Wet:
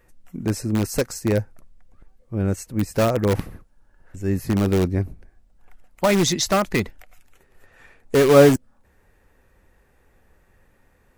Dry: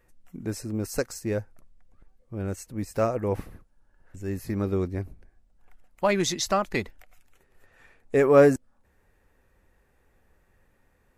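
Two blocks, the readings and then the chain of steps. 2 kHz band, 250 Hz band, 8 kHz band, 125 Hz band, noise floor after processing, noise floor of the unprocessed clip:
+5.0 dB, +7.0 dB, +6.5 dB, +8.5 dB, -60 dBFS, -66 dBFS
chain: dynamic bell 150 Hz, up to +5 dB, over -40 dBFS, Q 0.8; in parallel at -8 dB: integer overflow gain 17.5 dB; on the sum: trim +3 dB

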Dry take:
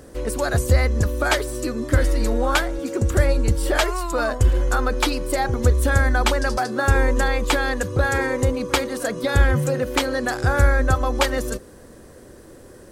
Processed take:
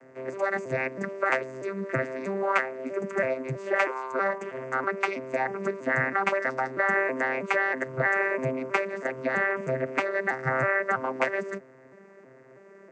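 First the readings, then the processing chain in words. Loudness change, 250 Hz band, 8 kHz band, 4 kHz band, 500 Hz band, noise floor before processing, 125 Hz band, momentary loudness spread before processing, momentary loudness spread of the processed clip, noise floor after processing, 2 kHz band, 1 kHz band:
-6.5 dB, -9.5 dB, under -20 dB, -19.0 dB, -4.5 dB, -44 dBFS, -17.5 dB, 5 LU, 7 LU, -52 dBFS, -2.0 dB, -4.5 dB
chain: vocoder on a broken chord bare fifth, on C3, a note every 322 ms; high-pass 990 Hz 6 dB/octave; resonant high shelf 2.8 kHz -7.5 dB, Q 3; trim +2.5 dB

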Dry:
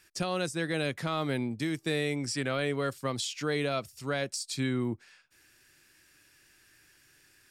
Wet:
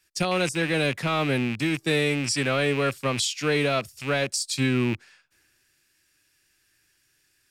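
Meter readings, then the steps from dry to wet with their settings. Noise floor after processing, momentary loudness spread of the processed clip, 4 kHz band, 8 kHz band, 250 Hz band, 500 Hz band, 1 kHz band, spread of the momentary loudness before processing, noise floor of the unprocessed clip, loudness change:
-68 dBFS, 3 LU, +7.5 dB, +8.0 dB, +6.0 dB, +6.5 dB, +6.5 dB, 3 LU, -63 dBFS, +7.0 dB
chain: rattle on loud lows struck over -41 dBFS, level -27 dBFS; three bands expanded up and down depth 40%; trim +6.5 dB

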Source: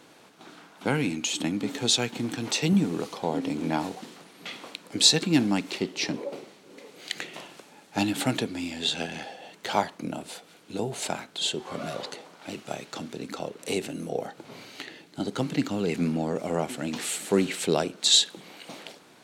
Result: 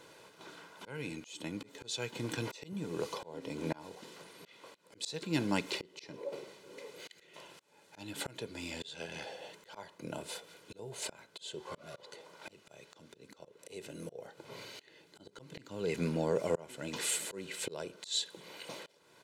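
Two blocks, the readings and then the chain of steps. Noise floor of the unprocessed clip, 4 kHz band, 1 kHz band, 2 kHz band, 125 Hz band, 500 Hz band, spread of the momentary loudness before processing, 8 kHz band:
-54 dBFS, -15.0 dB, -13.0 dB, -9.5 dB, -10.5 dB, -8.5 dB, 18 LU, -12.0 dB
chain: comb 2 ms, depth 57%; slow attack 504 ms; trim -3.5 dB

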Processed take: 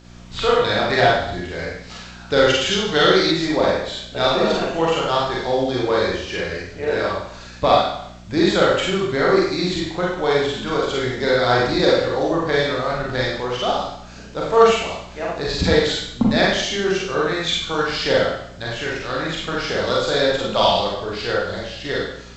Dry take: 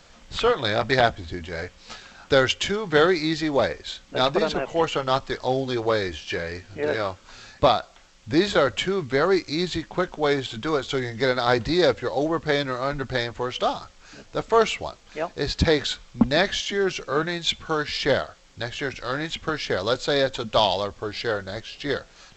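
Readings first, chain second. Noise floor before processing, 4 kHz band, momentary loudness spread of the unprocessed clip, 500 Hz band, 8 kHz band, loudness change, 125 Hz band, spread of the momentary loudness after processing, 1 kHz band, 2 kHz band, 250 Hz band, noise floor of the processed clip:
-52 dBFS, +5.0 dB, 11 LU, +4.5 dB, no reading, +4.5 dB, +3.5 dB, 11 LU, +4.5 dB, +4.5 dB, +4.0 dB, -39 dBFS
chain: mains buzz 60 Hz, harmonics 6, -47 dBFS -4 dB/octave; Schroeder reverb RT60 0.72 s, combs from 33 ms, DRR -4.5 dB; time-frequency box 2.71–3.32 s, 2.7–6.5 kHz +7 dB; trim -1.5 dB

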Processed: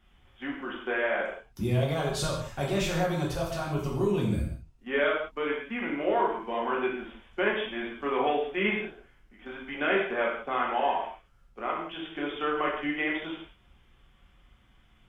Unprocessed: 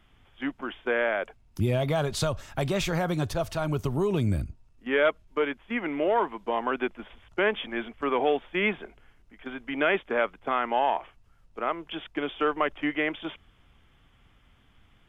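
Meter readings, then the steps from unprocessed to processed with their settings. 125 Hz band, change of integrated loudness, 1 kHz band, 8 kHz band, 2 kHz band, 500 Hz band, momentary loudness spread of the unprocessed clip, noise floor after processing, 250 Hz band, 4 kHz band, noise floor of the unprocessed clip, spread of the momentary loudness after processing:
-1.5 dB, -1.5 dB, -1.0 dB, no reading, -1.0 dB, -2.0 dB, 10 LU, -62 dBFS, -1.5 dB, -1.0 dB, -61 dBFS, 11 LU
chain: gated-style reverb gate 220 ms falling, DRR -4 dB; trim -6.5 dB

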